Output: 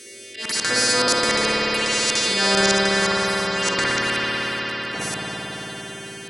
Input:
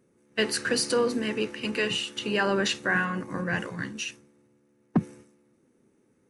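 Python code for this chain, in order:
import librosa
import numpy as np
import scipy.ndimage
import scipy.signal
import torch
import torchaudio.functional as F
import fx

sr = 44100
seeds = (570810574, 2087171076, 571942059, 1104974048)

y = fx.freq_snap(x, sr, grid_st=2)
y = fx.weighting(y, sr, curve='D')
y = fx.spec_box(y, sr, start_s=3.5, length_s=0.32, low_hz=200.0, high_hz=8200.0, gain_db=9)
y = fx.peak_eq(y, sr, hz=5100.0, db=fx.steps((0.0, 5.0), (1.86, 13.5), (3.74, 4.0)), octaves=2.1)
y = fx.level_steps(y, sr, step_db=21)
y = fx.auto_swell(y, sr, attack_ms=453.0)
y = fx.env_phaser(y, sr, low_hz=150.0, high_hz=2900.0, full_db=-28.0)
y = fx.rev_spring(y, sr, rt60_s=3.8, pass_ms=(56,), chirp_ms=40, drr_db=-8.5)
y = fx.spectral_comp(y, sr, ratio=2.0)
y = F.gain(torch.from_numpy(y), 3.5).numpy()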